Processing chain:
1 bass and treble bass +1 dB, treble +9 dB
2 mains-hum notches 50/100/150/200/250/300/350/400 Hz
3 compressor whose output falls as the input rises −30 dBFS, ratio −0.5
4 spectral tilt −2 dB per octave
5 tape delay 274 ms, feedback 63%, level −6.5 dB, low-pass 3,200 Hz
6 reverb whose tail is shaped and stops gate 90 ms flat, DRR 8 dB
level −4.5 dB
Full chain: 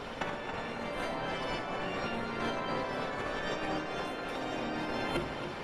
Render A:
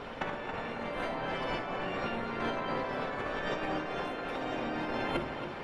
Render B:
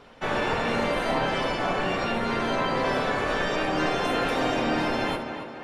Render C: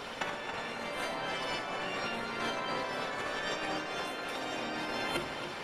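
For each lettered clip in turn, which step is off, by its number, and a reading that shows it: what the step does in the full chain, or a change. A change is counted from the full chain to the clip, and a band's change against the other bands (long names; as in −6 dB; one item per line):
1, 4 kHz band −2.5 dB
3, change in integrated loudness +9.5 LU
4, 8 kHz band +6.5 dB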